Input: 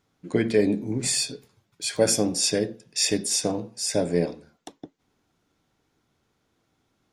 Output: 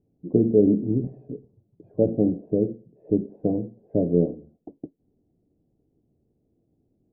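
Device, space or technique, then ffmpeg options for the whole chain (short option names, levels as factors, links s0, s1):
under water: -filter_complex "[0:a]lowpass=f=430:w=0.5412,lowpass=f=430:w=1.3066,equalizer=f=690:t=o:w=0.58:g=7,asettb=1/sr,asplit=3[s0][s1][s2];[s0]atrim=end=1.894[s3];[s1]atrim=start=1.89:end=3.17,asetpts=PTS-STARTPTS,afade=t=in:d=0.004:c=qsin,afade=t=out:st=1.276:d=0.004:c=qsin,highshelf=f=2100:g=-10[s4];[s2]atrim=start=3.166[s5];[s3][s4]acrossfade=d=0.004:c1=hsin:c2=qsin[s6];[s6][s5]acrossfade=d=0.004:c1=qsin:c2=hsin,volume=1.68"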